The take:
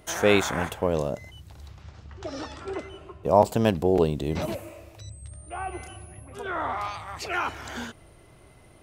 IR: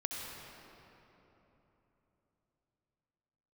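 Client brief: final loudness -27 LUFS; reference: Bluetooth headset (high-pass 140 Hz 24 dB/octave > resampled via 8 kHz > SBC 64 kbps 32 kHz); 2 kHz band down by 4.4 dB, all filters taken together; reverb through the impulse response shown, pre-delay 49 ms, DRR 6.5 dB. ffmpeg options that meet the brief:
-filter_complex "[0:a]equalizer=f=2000:t=o:g=-6,asplit=2[s0][s1];[1:a]atrim=start_sample=2205,adelay=49[s2];[s1][s2]afir=irnorm=-1:irlink=0,volume=0.376[s3];[s0][s3]amix=inputs=2:normalize=0,highpass=f=140:w=0.5412,highpass=f=140:w=1.3066,aresample=8000,aresample=44100" -ar 32000 -c:a sbc -b:a 64k

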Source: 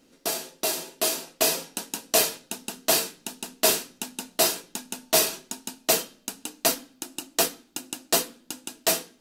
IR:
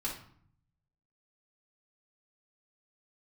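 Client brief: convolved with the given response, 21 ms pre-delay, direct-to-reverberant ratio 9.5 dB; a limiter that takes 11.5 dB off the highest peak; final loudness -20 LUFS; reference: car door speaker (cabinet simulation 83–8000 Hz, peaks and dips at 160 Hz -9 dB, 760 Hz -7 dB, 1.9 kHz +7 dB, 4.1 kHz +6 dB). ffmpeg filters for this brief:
-filter_complex "[0:a]alimiter=limit=0.141:level=0:latency=1,asplit=2[s0][s1];[1:a]atrim=start_sample=2205,adelay=21[s2];[s1][s2]afir=irnorm=-1:irlink=0,volume=0.251[s3];[s0][s3]amix=inputs=2:normalize=0,highpass=83,equalizer=f=160:t=q:w=4:g=-9,equalizer=f=760:t=q:w=4:g=-7,equalizer=f=1900:t=q:w=4:g=7,equalizer=f=4100:t=q:w=4:g=6,lowpass=f=8000:w=0.5412,lowpass=f=8000:w=1.3066,volume=3.76"

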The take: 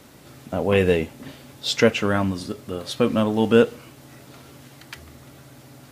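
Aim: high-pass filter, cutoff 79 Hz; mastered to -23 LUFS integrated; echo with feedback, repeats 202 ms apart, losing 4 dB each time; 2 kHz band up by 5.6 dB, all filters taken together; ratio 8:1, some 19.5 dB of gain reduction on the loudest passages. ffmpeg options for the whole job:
-af "highpass=79,equalizer=f=2000:t=o:g=7.5,acompressor=threshold=0.0316:ratio=8,aecho=1:1:202|404|606|808|1010|1212|1414|1616|1818:0.631|0.398|0.25|0.158|0.0994|0.0626|0.0394|0.0249|0.0157,volume=3.76"

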